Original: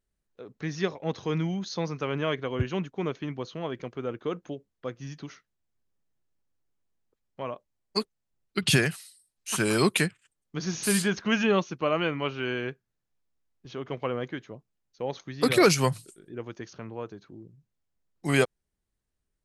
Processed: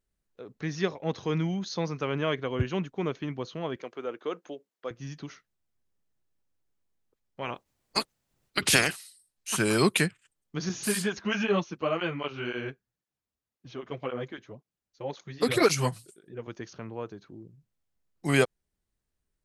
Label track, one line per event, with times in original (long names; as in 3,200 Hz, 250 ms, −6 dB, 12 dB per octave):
3.760000	4.910000	high-pass filter 360 Hz
7.420000	8.930000	ceiling on every frequency bin ceiling under each frame's peak by 20 dB
10.690000	16.480000	through-zero flanger with one copy inverted nulls at 1.9 Hz, depth 8 ms